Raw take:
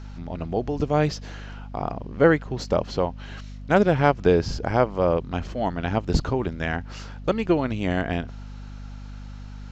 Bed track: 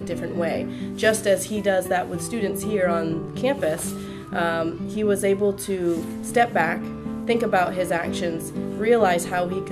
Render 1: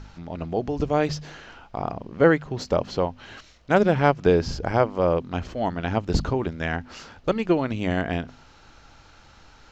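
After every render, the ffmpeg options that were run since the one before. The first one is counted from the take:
-af "bandreject=f=50:t=h:w=4,bandreject=f=100:t=h:w=4,bandreject=f=150:t=h:w=4,bandreject=f=200:t=h:w=4,bandreject=f=250:t=h:w=4"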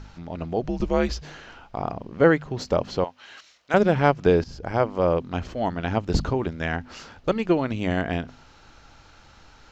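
-filter_complex "[0:a]asplit=3[a][b][c];[a]afade=t=out:st=0.62:d=0.02[d];[b]afreqshift=-93,afade=t=in:st=0.62:d=0.02,afade=t=out:st=1.21:d=0.02[e];[c]afade=t=in:st=1.21:d=0.02[f];[d][e][f]amix=inputs=3:normalize=0,asettb=1/sr,asplit=3[g][h][i];[g]atrim=end=3.044[j];[h]atrim=start=3.04:end=3.74,asetpts=PTS-STARTPTS,afade=t=in:d=0.004:c=qsin,afade=t=out:st=0.696:d=0.004:c=qsin,highpass=f=1.2k:p=1[k];[i]atrim=start=3.736[l];[j][k]acrossfade=d=0.004:c1=hsin:c2=qsin[m];[m][l]acrossfade=d=0.004:c1=qsin:c2=hsin,asplit=2[n][o];[n]atrim=end=4.44,asetpts=PTS-STARTPTS,afade=t=out:st=4.436:d=0.004:c=hsin:silence=0.177828[p];[o]atrim=start=4.44,asetpts=PTS-STARTPTS,afade=t=in:d=0.47:silence=0.177828[q];[p][q]concat=n=2:v=0:a=1"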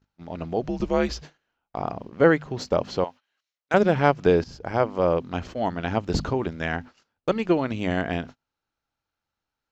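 -af "agate=range=-33dB:threshold=-37dB:ratio=16:detection=peak,lowshelf=f=63:g=-9.5"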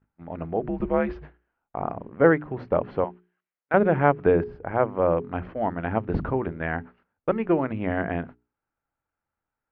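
-af "lowpass=f=2.1k:w=0.5412,lowpass=f=2.1k:w=1.3066,bandreject=f=60:t=h:w=6,bandreject=f=120:t=h:w=6,bandreject=f=180:t=h:w=6,bandreject=f=240:t=h:w=6,bandreject=f=300:t=h:w=6,bandreject=f=360:t=h:w=6,bandreject=f=420:t=h:w=6"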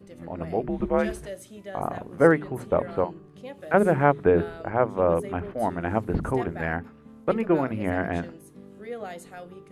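-filter_complex "[1:a]volume=-18dB[a];[0:a][a]amix=inputs=2:normalize=0"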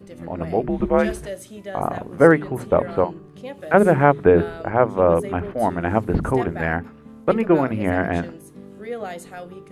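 -af "volume=5.5dB,alimiter=limit=-1dB:level=0:latency=1"

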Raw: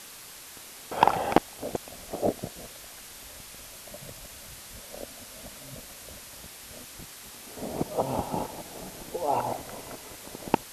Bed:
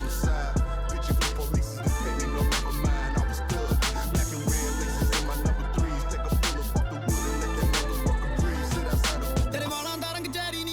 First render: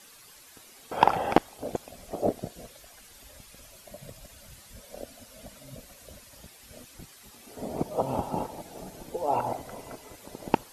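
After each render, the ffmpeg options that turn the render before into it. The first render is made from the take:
-af "afftdn=nr=10:nf=-46"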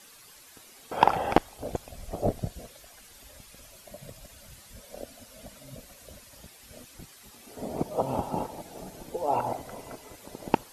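-filter_complex "[0:a]asettb=1/sr,asplit=3[a][b][c];[a]atrim=end=1.014[d];[b]atrim=start=1.01:end=2.59,asetpts=PTS-STARTPTS,afade=t=in:d=0.004:c=qsin,afade=t=out:st=1.576:d=0.004:c=qsin,asubboost=boost=10:cutoff=130[e];[c]atrim=start=2.586[f];[d][e]acrossfade=d=0.004:c1=hsin:c2=qsin[g];[g][f]acrossfade=d=0.004:c1=qsin:c2=hsin"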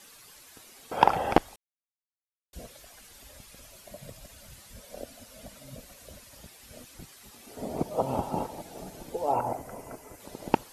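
-filter_complex "[0:a]asettb=1/sr,asplit=3[a][b][c];[a]atrim=end=9.324[d];[b]atrim=start=9.32:end=10.2,asetpts=PTS-STARTPTS,afade=t=in:d=0.004:c=qsin,afade=t=out:st=0.876:d=0.004:c=qsin,equalizer=f=3.7k:w=1.7:g=-12.5[e];[c]atrim=start=10.196[f];[d][e]acrossfade=d=0.004:c1=hsin:c2=qsin[g];[g][f]acrossfade=d=0.004:c1=qsin:c2=hsin,asplit=3[h][i][j];[h]atrim=end=1.56,asetpts=PTS-STARTPTS,afade=t=out:st=1.556:d=0.004:c=hsin[k];[i]atrim=start=1.56:end=2.53,asetpts=PTS-STARTPTS,volume=0[l];[j]atrim=start=2.53,asetpts=PTS-STARTPTS,afade=t=in:d=0.004:c=hsin[m];[k][l][m]concat=n=3:v=0:a=1"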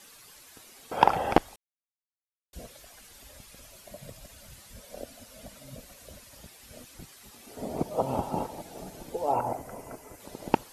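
-af anull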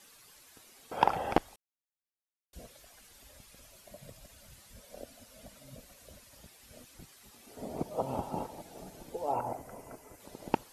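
-af "volume=-5.5dB"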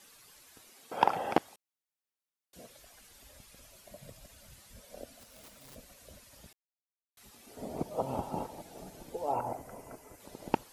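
-filter_complex "[0:a]asettb=1/sr,asplit=3[a][b][c];[a]atrim=end=0.704[d];[b]atrim=start=0.7:end=2.7,asetpts=PTS-STARTPTS,afade=t=in:d=0.004:c=qsin,afade=t=out:st=1.996:d=0.004:c=qsin,highpass=150[e];[c]atrim=start=2.696[f];[d][e]acrossfade=d=0.004:c1=hsin:c2=qsin[g];[g][f]acrossfade=d=0.004:c1=qsin:c2=hsin,asettb=1/sr,asplit=3[h][i][j];[h]atrim=end=5.194[k];[i]atrim=start=5.19:end=5.76,asetpts=PTS-STARTPTS,afade=t=in:d=0.004:c=qsin,afade=t=out:st=0.566:d=0.004:c=qsin,aeval=exprs='(mod(224*val(0)+1,2)-1)/224':c=same[l];[j]atrim=start=5.756[m];[k][l]acrossfade=d=0.004:c1=hsin:c2=qsin[n];[n][m]acrossfade=d=0.004:c1=qsin:c2=hsin,asplit=3[o][p][q];[o]atrim=end=6.53,asetpts=PTS-STARTPTS,afade=t=out:st=6.526:d=0.004:c=hsin[r];[p]atrim=start=6.53:end=7.17,asetpts=PTS-STARTPTS,volume=0[s];[q]atrim=start=7.17,asetpts=PTS-STARTPTS,afade=t=in:d=0.004:c=hsin[t];[r][s][t]concat=n=3:v=0:a=1"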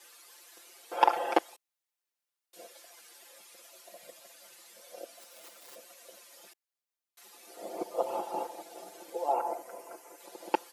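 -af "highpass=f=340:w=0.5412,highpass=f=340:w=1.3066,aecho=1:1:5.8:0.95"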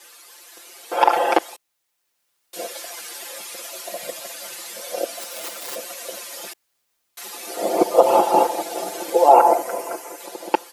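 -af "dynaudnorm=f=170:g=9:m=10.5dB,alimiter=level_in=9dB:limit=-1dB:release=50:level=0:latency=1"

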